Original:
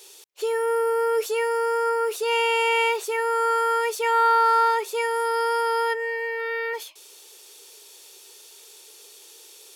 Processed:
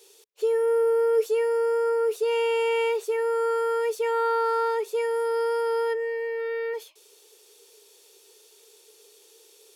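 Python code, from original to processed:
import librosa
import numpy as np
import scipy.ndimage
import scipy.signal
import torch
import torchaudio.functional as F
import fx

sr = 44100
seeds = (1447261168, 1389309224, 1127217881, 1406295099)

y = fx.peak_eq(x, sr, hz=440.0, db=11.0, octaves=0.5)
y = F.gain(torch.from_numpy(y), -8.5).numpy()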